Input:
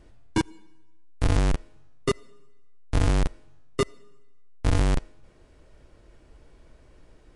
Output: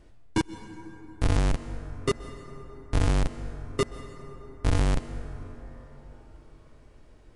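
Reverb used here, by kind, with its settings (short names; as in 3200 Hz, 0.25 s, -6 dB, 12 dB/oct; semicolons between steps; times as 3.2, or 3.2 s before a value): plate-style reverb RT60 4.7 s, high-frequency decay 0.35×, pre-delay 0.115 s, DRR 11.5 dB; gain -1.5 dB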